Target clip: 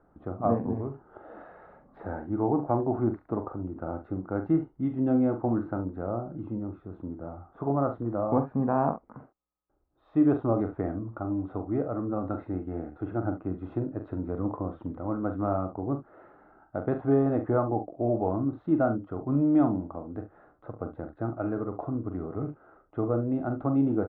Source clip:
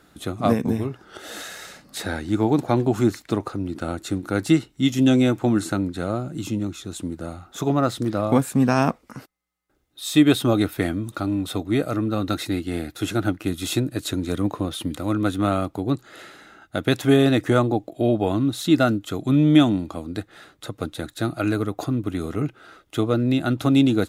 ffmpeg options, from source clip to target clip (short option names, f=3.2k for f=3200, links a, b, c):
-filter_complex "[0:a]lowpass=f=1k:w=0.5412,lowpass=f=1k:w=1.3066,equalizer=f=190:w=0.31:g=-10,asplit=2[a][b];[b]aecho=0:1:43|70:0.398|0.2[c];[a][c]amix=inputs=2:normalize=0,volume=1dB"